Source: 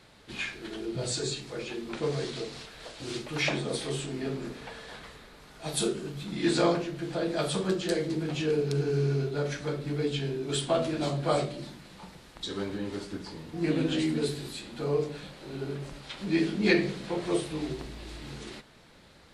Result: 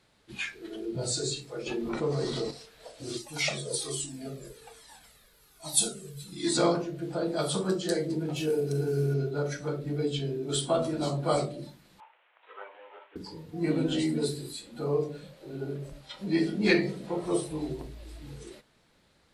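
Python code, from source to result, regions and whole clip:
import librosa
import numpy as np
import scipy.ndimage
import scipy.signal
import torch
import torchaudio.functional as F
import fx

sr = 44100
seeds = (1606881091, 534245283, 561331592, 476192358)

y = fx.chain(x, sr, fx.high_shelf(hz=3800.0, db=-5.0),
    fx.env_flatten(amount_pct=50), at=(1.66, 2.51))
y = fx.chain(y, sr, fx.high_shelf(hz=3900.0, db=11.5),
    fx.comb_cascade(direction='falling', hz=1.2), at=(3.17, 6.57))
y = fx.chain(y, sr, fx.cvsd(bps=64000),
    fx.hum_notches(base_hz=50, count=8), at=(8.36, 9.14))
y = fx.chain(y, sr, fx.cvsd(bps=16000),
    fx.highpass(hz=610.0, slope=24), at=(12.0, 13.16))
y = fx.noise_reduce_blind(y, sr, reduce_db=10)
y = fx.peak_eq(y, sr, hz=9400.0, db=3.5, octaves=1.1)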